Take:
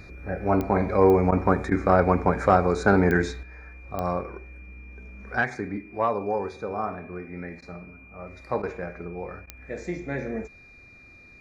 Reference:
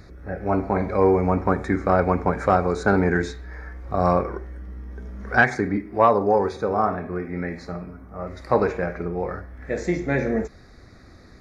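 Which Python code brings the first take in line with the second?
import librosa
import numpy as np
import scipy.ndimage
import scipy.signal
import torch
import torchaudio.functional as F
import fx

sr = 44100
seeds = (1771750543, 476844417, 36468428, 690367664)

y = fx.fix_declick_ar(x, sr, threshold=10.0)
y = fx.notch(y, sr, hz=2400.0, q=30.0)
y = fx.fix_interpolate(y, sr, at_s=(1.31, 1.7, 7.61, 8.62, 9.46), length_ms=11.0)
y = fx.fix_level(y, sr, at_s=3.43, step_db=8.0)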